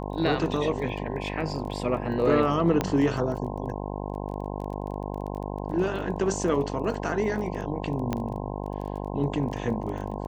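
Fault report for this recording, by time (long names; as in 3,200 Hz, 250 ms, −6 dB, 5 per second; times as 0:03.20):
mains buzz 50 Hz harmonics 21 −33 dBFS
surface crackle 19 per second −35 dBFS
0:02.81: click −10 dBFS
0:08.13: click −14 dBFS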